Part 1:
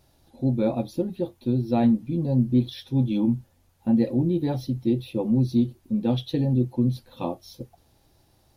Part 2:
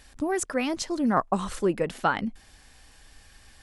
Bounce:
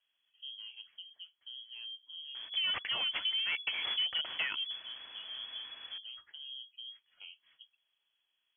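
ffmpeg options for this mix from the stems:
-filter_complex "[0:a]alimiter=limit=-18.5dB:level=0:latency=1:release=365,volume=-20dB[a];[1:a]asoftclip=type=tanh:threshold=-26.5dB,aecho=1:1:2.6:0.46,adelay=2350,volume=1.5dB[b];[a][b]amix=inputs=2:normalize=0,acrusher=samples=8:mix=1:aa=0.000001,lowpass=f=2.9k:t=q:w=0.5098,lowpass=f=2.9k:t=q:w=0.6013,lowpass=f=2.9k:t=q:w=0.9,lowpass=f=2.9k:t=q:w=2.563,afreqshift=-3400,acompressor=threshold=-33dB:ratio=2.5"

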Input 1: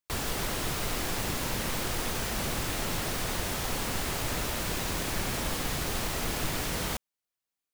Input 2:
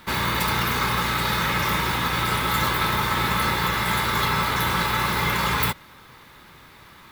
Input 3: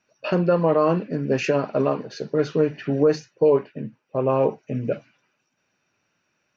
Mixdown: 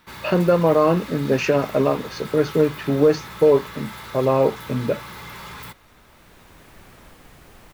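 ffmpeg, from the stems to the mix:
-filter_complex "[0:a]acrossover=split=2700[a][b];[b]acompressor=threshold=-49dB:ratio=4:attack=1:release=60[c];[a][c]amix=inputs=2:normalize=0,highshelf=f=4.9k:g=9.5,adelay=1600,volume=-15dB[d];[1:a]asoftclip=type=tanh:threshold=-24.5dB,volume=-9.5dB[e];[2:a]volume=2.5dB,asplit=2[f][g];[g]apad=whole_len=411688[h];[d][h]sidechaincompress=threshold=-35dB:ratio=8:attack=16:release=1300[i];[i][e][f]amix=inputs=3:normalize=0"

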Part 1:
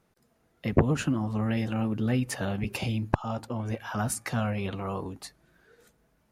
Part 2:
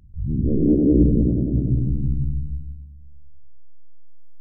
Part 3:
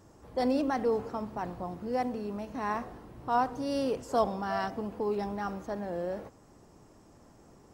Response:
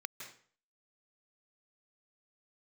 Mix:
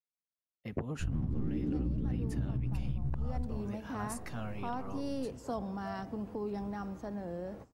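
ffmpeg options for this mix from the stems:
-filter_complex "[0:a]volume=-12dB[a];[1:a]aeval=exprs='sgn(val(0))*max(abs(val(0))-0.0168,0)':c=same,adelay=850,volume=1dB[b];[2:a]adelay=1350,volume=0.5dB[c];[b][c]amix=inputs=2:normalize=0,acrossover=split=250[d][e];[e]acompressor=threshold=-56dB:ratio=1.5[f];[d][f]amix=inputs=2:normalize=0,alimiter=limit=-17dB:level=0:latency=1:release=215,volume=0dB[g];[a][g]amix=inputs=2:normalize=0,agate=range=-33dB:threshold=-47dB:ratio=3:detection=peak,acompressor=threshold=-30dB:ratio=6"

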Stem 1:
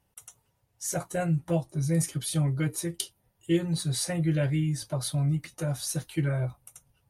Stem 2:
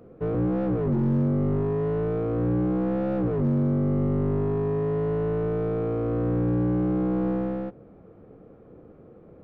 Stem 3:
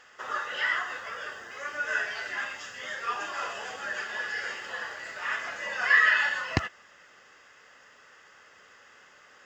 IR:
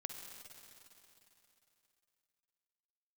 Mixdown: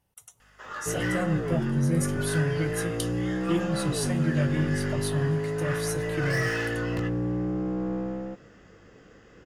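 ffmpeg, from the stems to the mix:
-filter_complex "[0:a]volume=-3dB,asplit=2[a][b];[b]volume=-15dB[c];[1:a]adelay=650,volume=-4.5dB[d];[2:a]volume=24dB,asoftclip=hard,volume=-24dB,flanger=delay=17.5:depth=4.2:speed=0.26,aeval=exprs='val(0)+0.001*(sin(2*PI*50*n/s)+sin(2*PI*2*50*n/s)/2+sin(2*PI*3*50*n/s)/3+sin(2*PI*4*50*n/s)/4+sin(2*PI*5*50*n/s)/5)':c=same,adelay=400,volume=-3dB,asplit=2[e][f];[f]volume=-13.5dB[g];[3:a]atrim=start_sample=2205[h];[c][g]amix=inputs=2:normalize=0[i];[i][h]afir=irnorm=-1:irlink=0[j];[a][d][e][j]amix=inputs=4:normalize=0"

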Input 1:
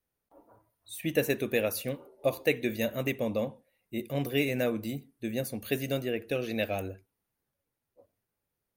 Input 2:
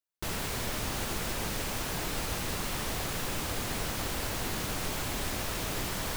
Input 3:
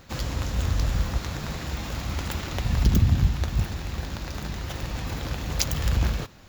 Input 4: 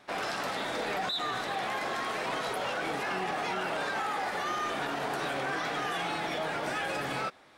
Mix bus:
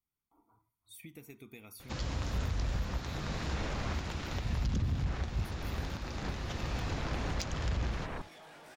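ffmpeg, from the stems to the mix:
-filter_complex "[0:a]aecho=1:1:0.9:0.95,acompressor=threshold=-35dB:ratio=8,volume=-12dB,asplit=2[a][b];[1:a]lowpass=2.5k,afwtdn=0.00794,adelay=2050,volume=-1dB[c];[2:a]lowpass=f=6.9k:w=0.5412,lowpass=f=6.9k:w=1.3066,adelay=1800,volume=-4dB[d];[3:a]highshelf=f=7.7k:g=10,flanger=delay=17.5:depth=2.6:speed=1,asoftclip=type=tanh:threshold=-37.5dB,adelay=2000,volume=-12.5dB[e];[b]apad=whole_len=362275[f];[c][f]sidechaincompress=threshold=-57dB:ratio=8:attack=16:release=162[g];[a][g][d][e]amix=inputs=4:normalize=0,asoftclip=type=tanh:threshold=-17.5dB,alimiter=level_in=1dB:limit=-24dB:level=0:latency=1:release=485,volume=-1dB"

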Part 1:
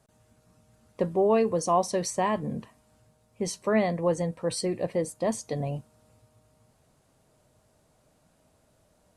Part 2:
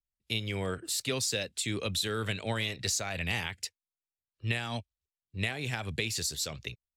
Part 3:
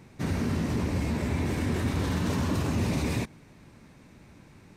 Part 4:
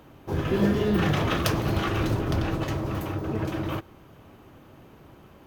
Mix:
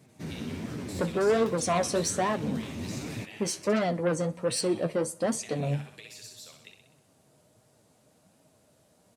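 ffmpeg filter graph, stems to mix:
-filter_complex "[0:a]equalizer=f=1.2k:w=0.73:g=-4,aeval=exprs='0.2*(cos(1*acos(clip(val(0)/0.2,-1,1)))-cos(1*PI/2))+0.0631*(cos(5*acos(clip(val(0)/0.2,-1,1)))-cos(5*PI/2))':c=same,volume=-0.5dB,asplit=3[a][b][c];[b]volume=-21.5dB[d];[1:a]highpass=f=500:p=1,acompressor=threshold=-35dB:ratio=3,volume=-6dB,asplit=2[e][f];[f]volume=-5.5dB[g];[2:a]equalizer=f=1.1k:t=o:w=1.6:g=-5.5,volume=-2.5dB[h];[3:a]volume=-19.5dB[i];[c]apad=whole_len=210115[j];[h][j]sidechaincompress=threshold=-26dB:ratio=8:attack=16:release=647[k];[d][g]amix=inputs=2:normalize=0,aecho=0:1:63|126|189|252|315|378|441|504:1|0.53|0.281|0.149|0.0789|0.0418|0.0222|0.0117[l];[a][e][k][i][l]amix=inputs=5:normalize=0,highpass=120,flanger=delay=6.2:depth=8.9:regen=45:speed=1.3:shape=triangular"

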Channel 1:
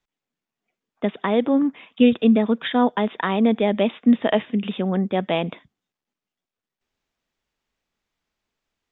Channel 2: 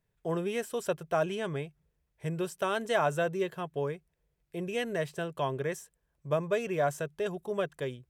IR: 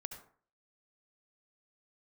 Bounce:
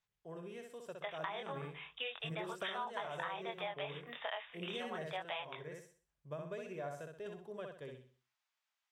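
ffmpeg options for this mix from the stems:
-filter_complex "[0:a]highpass=f=780:w=0.5412,highpass=f=780:w=1.3066,flanger=delay=19.5:depth=5.5:speed=0.35,volume=-2.5dB,asplit=2[a][b];[1:a]highshelf=f=8.9k:g=-8.5,volume=-7dB,afade=t=in:st=1.12:d=0.56:silence=0.298538,afade=t=out:st=4.68:d=0.67:silence=0.421697,asplit=2[c][d];[d]volume=-4.5dB[e];[b]apad=whole_len=357050[f];[c][f]sidechaincompress=threshold=-32dB:ratio=8:attack=16:release=1180[g];[e]aecho=0:1:63|126|189|252|315:1|0.36|0.13|0.0467|0.0168[h];[a][g][h]amix=inputs=3:normalize=0,acompressor=threshold=-38dB:ratio=6"

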